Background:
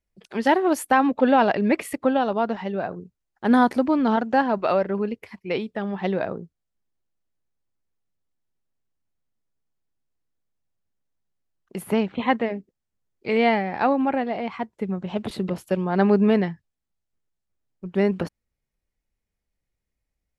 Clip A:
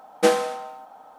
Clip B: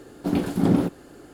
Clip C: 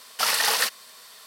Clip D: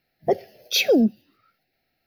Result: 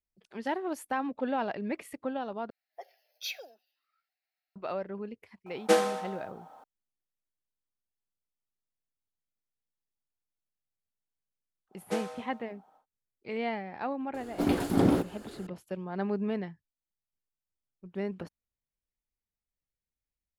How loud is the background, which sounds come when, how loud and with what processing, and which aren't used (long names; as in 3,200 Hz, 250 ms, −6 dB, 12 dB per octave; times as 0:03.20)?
background −13.5 dB
0:02.50: overwrite with D −16 dB + high-pass filter 750 Hz 24 dB per octave
0:05.46: mix in A −5 dB
0:11.68: mix in A −16 dB, fades 0.10 s
0:14.14: mix in B −0.5 dB + parametric band 180 Hz −8 dB 0.94 octaves
not used: C